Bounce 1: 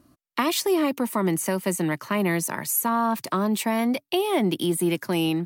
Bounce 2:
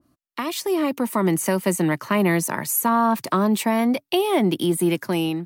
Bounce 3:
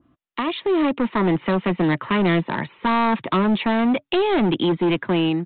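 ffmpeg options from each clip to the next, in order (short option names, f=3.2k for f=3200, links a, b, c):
-af "dynaudnorm=f=270:g=5:m=12dB,adynamicequalizer=threshold=0.0447:dfrequency=1900:dqfactor=0.7:tfrequency=1900:tqfactor=0.7:attack=5:release=100:ratio=0.375:range=2:mode=cutabove:tftype=highshelf,volume=-5.5dB"
-af "bandreject=f=600:w=12,aresample=8000,volume=19.5dB,asoftclip=hard,volume=-19.5dB,aresample=44100,volume=4dB"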